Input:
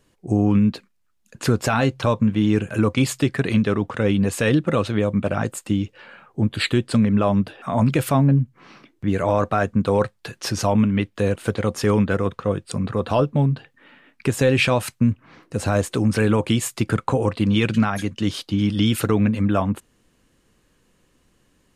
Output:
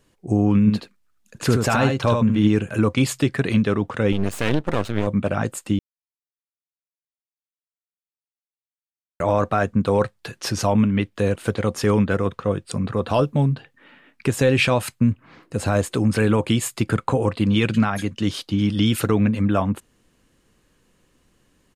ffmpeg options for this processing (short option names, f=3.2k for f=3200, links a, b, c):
-filter_complex "[0:a]asplit=3[a][b][c];[a]afade=t=out:st=0.66:d=0.02[d];[b]aecho=1:1:76:0.596,afade=t=in:st=0.66:d=0.02,afade=t=out:st=2.47:d=0.02[e];[c]afade=t=in:st=2.47:d=0.02[f];[d][e][f]amix=inputs=3:normalize=0,asettb=1/sr,asplit=3[g][h][i];[g]atrim=end=4.124[j];[h]atrim=start=4.12:end=5.07,asetpts=PTS-STARTPTS,afade=t=in:d=0.004:c=qsin,afade=t=out:st=0.946:d=0.004:c=qsin,aeval=exprs='max(val(0),0)':c=same[k];[i]atrim=start=5.066[l];[j][k]acrossfade=d=0.004:c1=hsin:c2=qsin[m];[m][l]acrossfade=d=0.004:c1=qsin:c2=hsin,asettb=1/sr,asplit=3[n][o][p];[n]atrim=end=13.144[q];[o]atrim=start=13.14:end=13.54,asetpts=PTS-STARTPTS,afade=t=in:d=0.004:c=qsin,afade=t=out:st=0.396:d=0.004:c=qsin,aemphasis=mode=production:type=cd[r];[p]atrim=start=13.536[s];[q][r]acrossfade=d=0.004:c1=hsin:c2=qsin[t];[t][s]acrossfade=d=0.004:c1=qsin:c2=hsin,asettb=1/sr,asplit=3[u][v][w];[u]atrim=end=14.744[x];[v]atrim=start=14.74:end=18.09,asetpts=PTS-STARTPTS,afade=t=in:d=0.004:c=qsin,afade=t=out:st=3.346:d=0.004:c=qsin,bandreject=f=5.8k:w=12[y];[w]atrim=start=18.086[z];[x][y]acrossfade=d=0.004:c1=hsin:c2=qsin[aa];[aa][z]acrossfade=d=0.004:c1=qsin:c2=hsin,asplit=3[ab][ac][ad];[ab]atrim=end=5.79,asetpts=PTS-STARTPTS,afade=t=out:st=5.786:d=0.004:c=hsin[ae];[ac]atrim=start=5.79:end=9.2,asetpts=PTS-STARTPTS,volume=0[af];[ad]atrim=start=9.2,asetpts=PTS-STARTPTS,afade=t=in:d=0.004:c=hsin[ag];[ae][af][ag]concat=n=3:v=0:a=1"